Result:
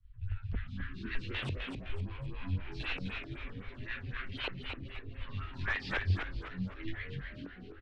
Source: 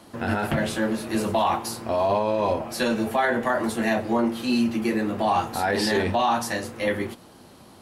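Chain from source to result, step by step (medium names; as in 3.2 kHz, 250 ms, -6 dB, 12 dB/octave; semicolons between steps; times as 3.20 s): self-modulated delay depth 0.075 ms; inverse Chebyshev band-stop 240–770 Hz, stop band 80 dB; treble shelf 2.1 kHz +4.5 dB; in parallel at +3 dB: compressor with a negative ratio -37 dBFS, ratio -0.5; on the sum: feedback comb 91 Hz, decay 0.2 s, harmonics all, mix 70%; LFO low-pass saw up 0.67 Hz 420–2300 Hz; wavefolder -35.5 dBFS; tape spacing loss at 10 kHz 37 dB; on a send: frequency-shifting echo 256 ms, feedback 45%, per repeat -140 Hz, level -4.5 dB; on the sum: lamp-driven phase shifter 3.9 Hz; trim +17 dB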